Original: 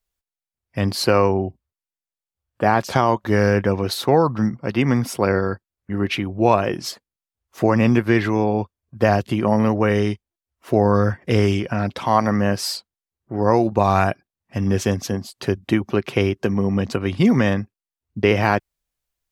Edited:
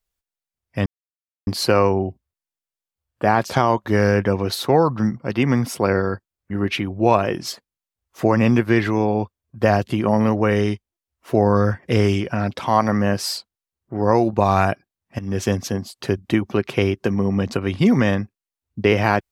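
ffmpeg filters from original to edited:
ffmpeg -i in.wav -filter_complex "[0:a]asplit=3[link_01][link_02][link_03];[link_01]atrim=end=0.86,asetpts=PTS-STARTPTS,afade=type=out:start_time=0.856:duration=0.004:curve=hsin,apad=pad_dur=0.61[link_04];[link_02]atrim=start=0.86:end=14.58,asetpts=PTS-STARTPTS,afade=type=in:duration=0.004:curve=hsin,afade=type=out:start_time=13.716:duration=0.004:curve=hsin:silence=0.211349[link_05];[link_03]atrim=start=14.58,asetpts=PTS-STARTPTS,afade=type=in:duration=0.29:silence=0.211349[link_06];[link_04][link_05][link_06]concat=n=3:v=0:a=1" out.wav

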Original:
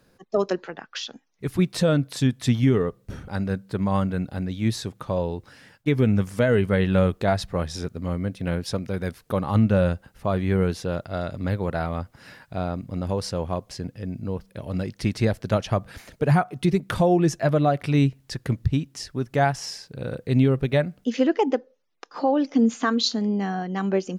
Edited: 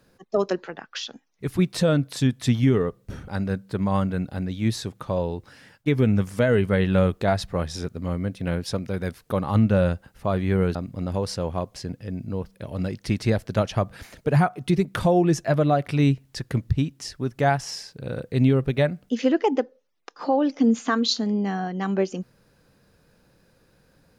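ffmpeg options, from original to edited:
ffmpeg -i in.wav -filter_complex "[0:a]asplit=2[link_01][link_02];[link_01]atrim=end=10.752[link_03];[link_02]atrim=start=12.698[link_04];[link_03][link_04]acrossfade=duration=0.004:curve1=hsin:curve2=hsin" out.wav

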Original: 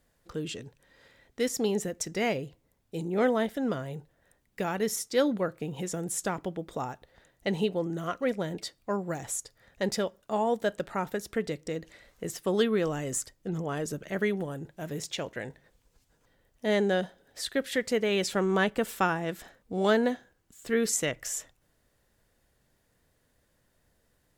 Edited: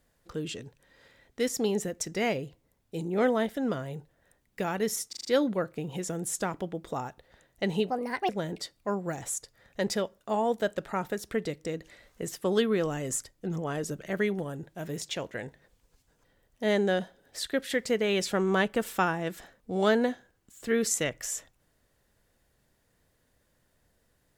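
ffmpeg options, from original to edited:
ffmpeg -i in.wav -filter_complex "[0:a]asplit=7[link_01][link_02][link_03][link_04][link_05][link_06][link_07];[link_01]atrim=end=5.132[link_08];[link_02]atrim=start=5.088:end=5.132[link_09];[link_03]atrim=start=5.088:end=5.132[link_10];[link_04]atrim=start=5.088:end=5.132[link_11];[link_05]atrim=start=5.088:end=7.744[link_12];[link_06]atrim=start=7.74:end=8.31,asetpts=PTS-STARTPTS,asetrate=64386,aresample=44100,atrim=end_sample=17217,asetpts=PTS-STARTPTS[link_13];[link_07]atrim=start=8.306[link_14];[link_08][link_09]acrossfade=duration=0.004:curve1=hsin:curve2=hsin[link_15];[link_15][link_10]acrossfade=duration=0.004:curve1=hsin:curve2=hsin[link_16];[link_16][link_11]acrossfade=duration=0.004:curve1=hsin:curve2=hsin[link_17];[link_17][link_12]acrossfade=duration=0.004:curve1=hsin:curve2=hsin[link_18];[link_18][link_13]acrossfade=duration=0.004:curve1=hsin:curve2=hsin[link_19];[link_19][link_14]acrossfade=duration=0.004:curve1=hsin:curve2=hsin" out.wav

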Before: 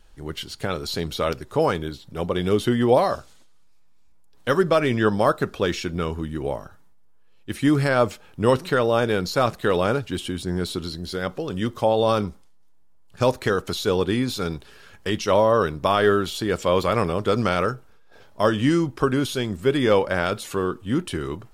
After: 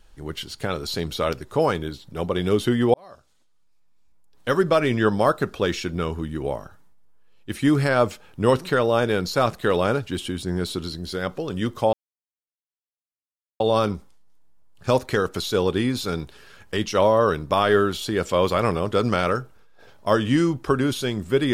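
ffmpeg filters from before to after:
ffmpeg -i in.wav -filter_complex "[0:a]asplit=3[link_01][link_02][link_03];[link_01]atrim=end=2.94,asetpts=PTS-STARTPTS,afade=type=out:start_time=2.936:duration=0.004:curve=hsin[link_04];[link_02]atrim=start=2.94:end=11.93,asetpts=PTS-STARTPTS,afade=type=in:duration=1.75,afade=type=out:start_time=8.986:duration=0.004:curve=hsin,apad=pad_dur=1.67[link_05];[link_03]atrim=start=11.93,asetpts=PTS-STARTPTS,afade=type=in:duration=0.004:curve=hsin[link_06];[link_04][link_05][link_06]concat=n=3:v=0:a=1" out.wav

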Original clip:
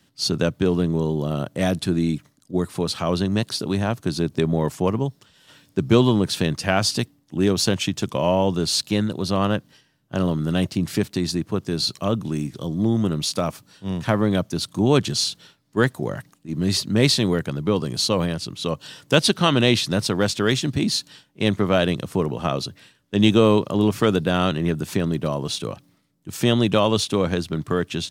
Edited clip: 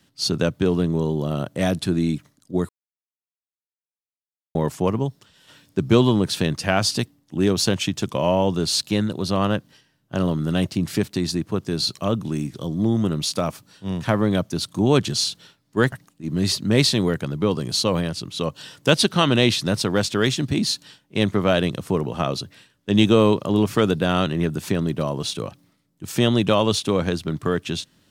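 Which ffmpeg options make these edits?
ffmpeg -i in.wav -filter_complex "[0:a]asplit=4[link_01][link_02][link_03][link_04];[link_01]atrim=end=2.69,asetpts=PTS-STARTPTS,afade=type=out:start_time=2.686:duration=0.004:curve=hsin[link_05];[link_02]atrim=start=2.69:end=4.55,asetpts=PTS-STARTPTS,volume=0[link_06];[link_03]atrim=start=4.55:end=15.922,asetpts=PTS-STARTPTS,afade=type=in:duration=0.004:curve=hsin[link_07];[link_04]atrim=start=16.168[link_08];[link_05][link_06][link_07]concat=n=3:v=0:a=1[link_09];[link_09][link_08]acrossfade=duration=0.004:curve1=hsin:curve2=hsin" out.wav

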